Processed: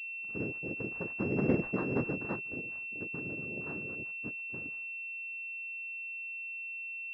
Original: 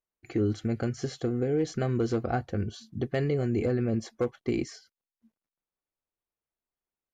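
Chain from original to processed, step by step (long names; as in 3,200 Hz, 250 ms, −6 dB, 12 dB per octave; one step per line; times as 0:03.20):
pitch shifter swept by a sawtooth −11 semitones, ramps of 898 ms
source passing by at 0:01.58, 12 m/s, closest 4.5 metres
cochlear-implant simulation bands 3
pitch vibrato 5.4 Hz 33 cents
switching amplifier with a slow clock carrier 2,700 Hz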